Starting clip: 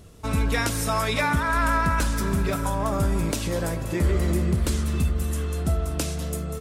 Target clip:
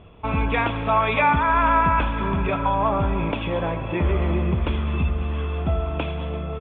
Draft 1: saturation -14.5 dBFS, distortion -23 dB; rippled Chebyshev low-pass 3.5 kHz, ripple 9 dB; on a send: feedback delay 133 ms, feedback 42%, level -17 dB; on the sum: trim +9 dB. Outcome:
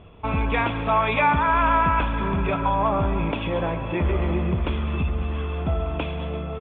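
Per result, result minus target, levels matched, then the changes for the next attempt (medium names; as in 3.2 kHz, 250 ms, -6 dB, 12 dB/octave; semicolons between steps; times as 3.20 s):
saturation: distortion +18 dB; echo 50 ms late
change: saturation -4.5 dBFS, distortion -41 dB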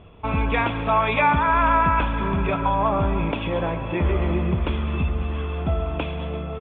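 echo 50 ms late
change: feedback delay 83 ms, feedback 42%, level -17 dB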